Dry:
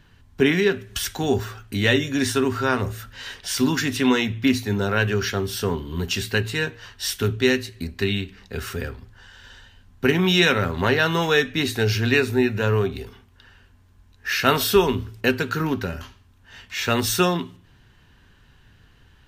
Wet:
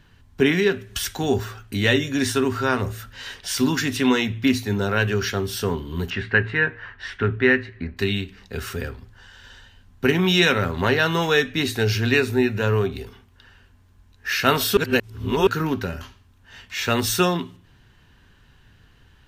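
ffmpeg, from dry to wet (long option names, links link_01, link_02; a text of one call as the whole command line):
ffmpeg -i in.wav -filter_complex "[0:a]asettb=1/sr,asplit=3[link_01][link_02][link_03];[link_01]atrim=end=6.104[link_04];[link_02]atrim=start=6.1:end=7.97,asetpts=PTS-STARTPTS,afade=type=in:duration=0.004:curve=qsin,afade=type=out:start_time=1.866:duration=0.004:curve=qsin,lowpass=frequency=1800:width_type=q:width=2.3[link_05];[link_03]atrim=start=7.966[link_06];[link_04][link_05]acrossfade=duration=0.004:curve1=hsin:curve2=qsin[link_07];[link_07][link_06]acrossfade=duration=0.004:curve1=qsin:curve2=hsin,asplit=3[link_08][link_09][link_10];[link_08]atrim=end=14.772[link_11];[link_09]atrim=start=14.768:end=15.472,asetpts=PTS-STARTPTS,areverse[link_12];[link_10]atrim=start=15.468[link_13];[link_11][link_12]acrossfade=duration=0.004:curve1=hsin:curve2=hsin[link_14];[link_14][link_13]acrossfade=duration=0.004:curve1=hsin:curve2=hsin" out.wav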